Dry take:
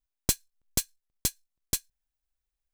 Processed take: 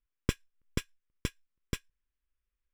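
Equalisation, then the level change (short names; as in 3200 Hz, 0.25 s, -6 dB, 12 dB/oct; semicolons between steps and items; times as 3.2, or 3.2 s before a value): polynomial smoothing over 25 samples; Butterworth band-stop 730 Hz, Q 1.6; +1.5 dB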